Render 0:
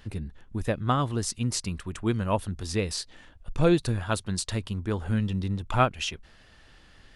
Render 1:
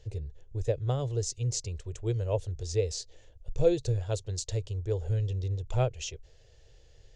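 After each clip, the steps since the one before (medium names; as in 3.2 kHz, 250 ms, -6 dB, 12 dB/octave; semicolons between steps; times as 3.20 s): FFT filter 130 Hz 0 dB, 210 Hz -26 dB, 460 Hz +4 dB, 1.2 kHz -21 dB, 2.1 kHz -13 dB, 4.8 kHz -6 dB, 6.9 kHz +2 dB, 9.8 kHz -21 dB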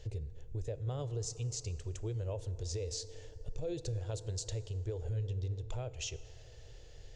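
peak limiter -23 dBFS, peak gain reduction 10.5 dB; compression 2.5:1, threshold -44 dBFS, peak gain reduction 11.5 dB; FDN reverb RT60 3.4 s, high-frequency decay 0.4×, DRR 13.5 dB; trim +4 dB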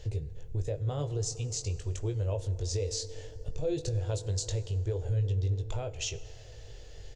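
doubling 20 ms -7 dB; trim +5 dB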